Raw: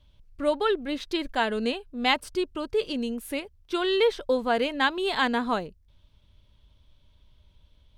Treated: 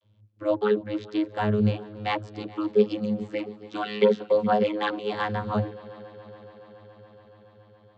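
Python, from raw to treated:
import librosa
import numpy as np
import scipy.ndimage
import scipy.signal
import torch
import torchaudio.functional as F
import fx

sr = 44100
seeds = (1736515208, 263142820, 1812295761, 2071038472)

y = fx.octave_divider(x, sr, octaves=1, level_db=-6.0)
y = fx.comb(y, sr, ms=4.1, depth=0.86, at=(2.39, 4.95))
y = fx.vocoder(y, sr, bands=32, carrier='saw', carrier_hz=105.0)
y = fx.echo_heads(y, sr, ms=141, heads='second and third', feedback_pct=74, wet_db=-22.5)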